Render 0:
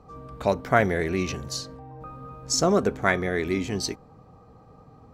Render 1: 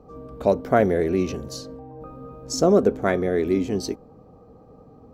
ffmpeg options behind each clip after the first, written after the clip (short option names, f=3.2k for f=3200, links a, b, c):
-af "equalizer=f=125:t=o:w=1:g=-4,equalizer=f=250:t=o:w=1:g=4,equalizer=f=500:t=o:w=1:g=5,equalizer=f=1k:t=o:w=1:g=-4,equalizer=f=2k:t=o:w=1:g=-7,equalizer=f=4k:t=o:w=1:g=-4,equalizer=f=8k:t=o:w=1:g=-6,volume=1.5dB"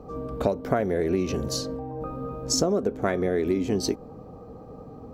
-af "acompressor=threshold=-26dB:ratio=16,volume=6dB"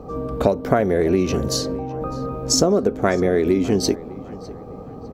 -filter_complex "[0:a]asplit=2[a][b];[b]adelay=604,lowpass=f=3.3k:p=1,volume=-19dB,asplit=2[c][d];[d]adelay=604,lowpass=f=3.3k:p=1,volume=0.41,asplit=2[e][f];[f]adelay=604,lowpass=f=3.3k:p=1,volume=0.41[g];[a][c][e][g]amix=inputs=4:normalize=0,volume=6.5dB"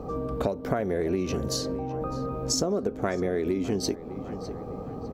-af "acompressor=threshold=-31dB:ratio=2"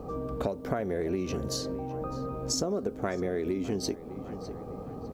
-af "acrusher=bits=10:mix=0:aa=0.000001,volume=-3.5dB"